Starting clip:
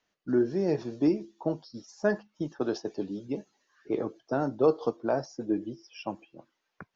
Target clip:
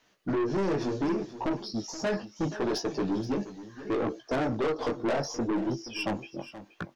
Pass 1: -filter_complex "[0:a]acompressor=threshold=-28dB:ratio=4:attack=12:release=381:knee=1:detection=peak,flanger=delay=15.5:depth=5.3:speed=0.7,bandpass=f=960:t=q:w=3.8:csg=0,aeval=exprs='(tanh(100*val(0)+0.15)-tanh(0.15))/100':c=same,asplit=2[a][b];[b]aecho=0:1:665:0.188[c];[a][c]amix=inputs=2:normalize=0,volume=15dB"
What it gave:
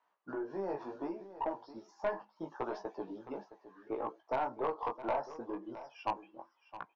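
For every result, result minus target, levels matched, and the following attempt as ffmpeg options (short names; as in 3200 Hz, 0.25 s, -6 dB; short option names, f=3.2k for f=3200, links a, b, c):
echo 0.189 s late; 1000 Hz band +7.0 dB
-filter_complex "[0:a]acompressor=threshold=-28dB:ratio=4:attack=12:release=381:knee=1:detection=peak,flanger=delay=15.5:depth=5.3:speed=0.7,bandpass=f=960:t=q:w=3.8:csg=0,aeval=exprs='(tanh(100*val(0)+0.15)-tanh(0.15))/100':c=same,asplit=2[a][b];[b]aecho=0:1:476:0.188[c];[a][c]amix=inputs=2:normalize=0,volume=15dB"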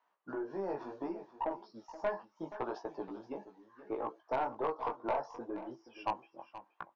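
1000 Hz band +7.5 dB
-filter_complex "[0:a]acompressor=threshold=-28dB:ratio=4:attack=12:release=381:knee=1:detection=peak,flanger=delay=15.5:depth=5.3:speed=0.7,aeval=exprs='(tanh(100*val(0)+0.15)-tanh(0.15))/100':c=same,asplit=2[a][b];[b]aecho=0:1:476:0.188[c];[a][c]amix=inputs=2:normalize=0,volume=15dB"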